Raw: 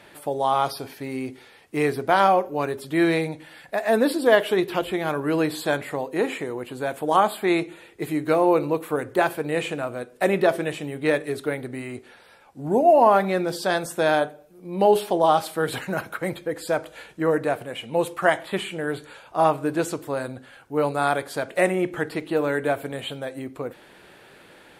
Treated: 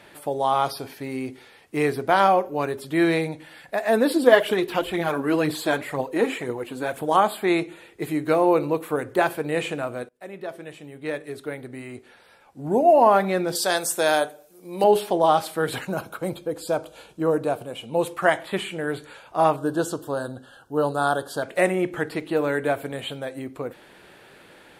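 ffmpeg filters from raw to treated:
ffmpeg -i in.wav -filter_complex "[0:a]asplit=3[link_01][link_02][link_03];[link_01]afade=type=out:start_time=4.1:duration=0.02[link_04];[link_02]aphaser=in_gain=1:out_gain=1:delay=4.6:decay=0.48:speed=2:type=triangular,afade=type=in:start_time=4.1:duration=0.02,afade=type=out:start_time=7.07:duration=0.02[link_05];[link_03]afade=type=in:start_time=7.07:duration=0.02[link_06];[link_04][link_05][link_06]amix=inputs=3:normalize=0,asettb=1/sr,asplit=3[link_07][link_08][link_09];[link_07]atrim=end=13.554[link_10];[link_08]atrim=start=13.55:end=14.84,asetpts=PTS-STARTPTS,afade=type=in:duration=0.004:curve=qsin,afade=type=out:start_time=1.286:duration=0.004:curve=qsin,bass=frequency=250:gain=-9,treble=frequency=4000:gain=11[link_11];[link_09]atrim=start=14.836[link_12];[link_10][link_11]acrossfade=duration=0.004:curve1=hsin:curve2=qsin[link_13];[link_13][link_12]acrossfade=duration=0.004:curve1=qsin:curve2=hsin,asettb=1/sr,asplit=3[link_14][link_15][link_16];[link_14]atrim=end=15.854[link_17];[link_15]atrim=start=15.85:end=18.02,asetpts=PTS-STARTPTS,afade=type=in:duration=0.004:curve=qsin,afade=type=out:start_time=2.166:duration=0.004:curve=qsin,equalizer=frequency=1900:width_type=o:width=0.48:gain=-15[link_18];[link_16]atrim=start=18.016[link_19];[link_17][link_18]acrossfade=duration=0.004:curve1=hsin:curve2=qsin[link_20];[link_20][link_19]acrossfade=duration=0.004:curve1=qsin:curve2=hsin,asettb=1/sr,asplit=3[link_21][link_22][link_23];[link_21]atrim=end=19.564[link_24];[link_22]atrim=start=19.56:end=21.43,asetpts=PTS-STARTPTS,afade=type=in:duration=0.004:curve=qsin,afade=type=out:start_time=1.866:duration=0.004:curve=qsin,asuperstop=centerf=2200:order=8:qfactor=2[link_25];[link_23]atrim=start=21.426[link_26];[link_24][link_25]acrossfade=duration=0.004:curve1=hsin:curve2=qsin[link_27];[link_27][link_26]acrossfade=duration=0.004:curve1=qsin:curve2=hsin,asplit=2[link_28][link_29];[link_28]atrim=end=10.09,asetpts=PTS-STARTPTS,afade=type=out:start_time=10.086:duration=0.004:curve=hsin:silence=0.0668344[link_30];[link_29]atrim=start=10.09,asetpts=PTS-STARTPTS,afade=type=in:duration=2.82:silence=0.0668344[link_31];[link_30][link_31]concat=n=2:v=0:a=1" out.wav

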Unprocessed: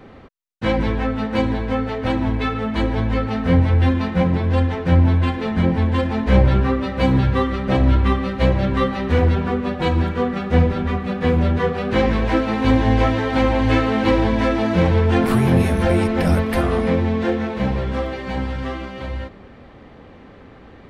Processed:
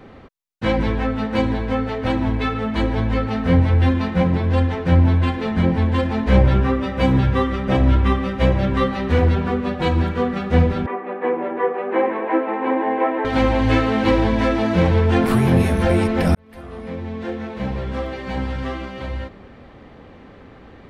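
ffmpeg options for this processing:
ffmpeg -i in.wav -filter_complex "[0:a]asettb=1/sr,asplit=3[link_01][link_02][link_03];[link_01]atrim=end=6.384[link_04];[link_02]atrim=start=6.38:end=8.77,asetpts=PTS-STARTPTS,afade=type=in:duration=0.004:curve=qsin,afade=type=out:start_time=2.386:duration=0.004:curve=qsin,bandreject=frequency=4200:width=12[link_05];[link_03]atrim=start=8.766[link_06];[link_04][link_05]acrossfade=duration=0.004:curve1=hsin:curve2=qsin[link_07];[link_07][link_06]acrossfade=duration=0.004:curve1=qsin:curve2=hsin,asettb=1/sr,asplit=3[link_08][link_09][link_10];[link_08]atrim=end=10.864[link_11];[link_09]atrim=start=10.86:end=13.25,asetpts=PTS-STARTPTS,afade=type=in:duration=0.004:curve=qsin,afade=type=out:start_time=2.386:duration=0.004:curve=qsin,highpass=frequency=320:width=0.5412,highpass=frequency=320:width=1.3066,equalizer=frequency=340:width_type=q:width=4:gain=5,equalizer=frequency=910:width_type=q:width=4:gain=6,equalizer=frequency=1400:width_type=q:width=4:gain=-5,lowpass=frequency=2100:width=0.5412,lowpass=frequency=2100:width=1.3066[link_12];[link_10]atrim=start=13.246[link_13];[link_11][link_12]acrossfade=duration=0.004:curve1=hsin:curve2=qsin[link_14];[link_14][link_13]acrossfade=duration=0.004:curve1=qsin:curve2=hsin,asplit=2[link_15][link_16];[link_15]atrim=end=16.35,asetpts=PTS-STARTPTS,afade=type=out:start_time=16.346:duration=0.004:curve=hsin[link_17];[link_16]atrim=start=16.35,asetpts=PTS-STARTPTS,afade=type=in:duration=2.18[link_18];[link_17][link_18]concat=n=2:v=0:a=1" out.wav

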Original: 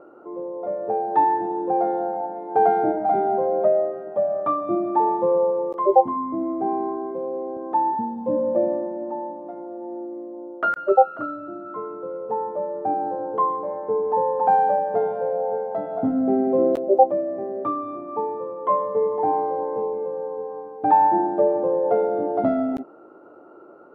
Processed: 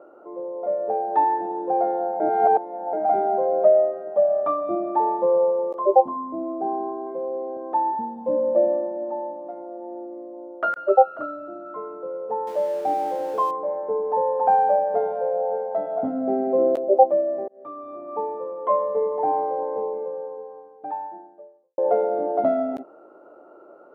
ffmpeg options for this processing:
ffmpeg -i in.wav -filter_complex "[0:a]asettb=1/sr,asplit=3[link_01][link_02][link_03];[link_01]atrim=end=5.774[link_04];[link_02]atrim=start=5.77:end=7.07,asetpts=PTS-STARTPTS,afade=type=in:duration=0.004:curve=qsin,afade=type=out:start_time=1.296:duration=0.004:curve=qsin,equalizer=frequency=2200:width=2.2:gain=-14[link_05];[link_03]atrim=start=7.066[link_06];[link_04][link_05]acrossfade=duration=0.004:curve1=hsin:curve2=qsin[link_07];[link_07][link_06]acrossfade=duration=0.004:curve1=qsin:curve2=hsin,asettb=1/sr,asplit=3[link_08][link_09][link_10];[link_08]atrim=end=12.474[link_11];[link_09]atrim=start=12.47:end=13.51,asetpts=PTS-STARTPTS,afade=type=in:duration=0.004:curve=qsin,afade=type=out:start_time=1.036:duration=0.004:curve=qsin,aeval=exprs='val(0)+0.5*0.0141*sgn(val(0))':channel_layout=same[link_12];[link_10]atrim=start=13.506[link_13];[link_11][link_12]acrossfade=duration=0.004:curve1=hsin:curve2=qsin[link_14];[link_14][link_13]acrossfade=duration=0.004:curve1=qsin:curve2=hsin,asplit=5[link_15][link_16][link_17][link_18][link_19];[link_15]atrim=end=2.202[link_20];[link_16]atrim=start=2.198:end=2.932,asetpts=PTS-STARTPTS,areverse[link_21];[link_17]atrim=start=2.928:end=17.48,asetpts=PTS-STARTPTS,afade=type=out:start_time=14.548:duration=0.004:curve=hsin[link_22];[link_18]atrim=start=17.48:end=21.78,asetpts=PTS-STARTPTS,afade=type=in:duration=0.7,afade=type=out:start_time=2.47:duration=1.83:curve=qua[link_23];[link_19]atrim=start=21.78,asetpts=PTS-STARTPTS,afade=type=in:duration=0.004:curve=hsin[link_24];[link_20][link_21]acrossfade=duration=0.004:curve1=hsin:curve2=hsin[link_25];[link_22][link_23][link_24]concat=n=3:v=0:a=1[link_26];[link_25][link_26]acrossfade=duration=0.004:curve1=hsin:curve2=hsin,highpass=frequency=280:poles=1,equalizer=frequency=610:width_type=o:width=0.57:gain=7,volume=-2.5dB" out.wav

